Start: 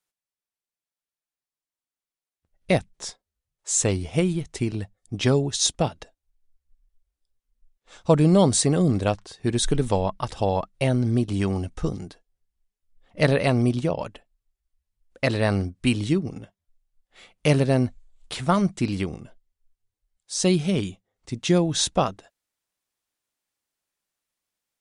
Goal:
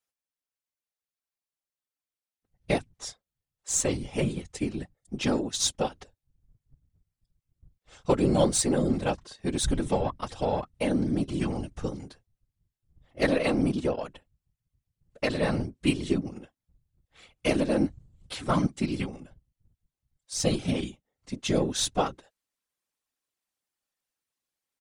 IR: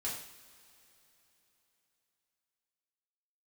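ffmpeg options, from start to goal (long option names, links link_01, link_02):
-af "aeval=exprs='0.531*(cos(1*acos(clip(val(0)/0.531,-1,1)))-cos(1*PI/2))+0.0133*(cos(8*acos(clip(val(0)/0.531,-1,1)))-cos(8*PI/2))':channel_layout=same,aecho=1:1:3.8:0.78,afftfilt=real='hypot(re,im)*cos(2*PI*random(0))':imag='hypot(re,im)*sin(2*PI*random(1))':win_size=512:overlap=0.75"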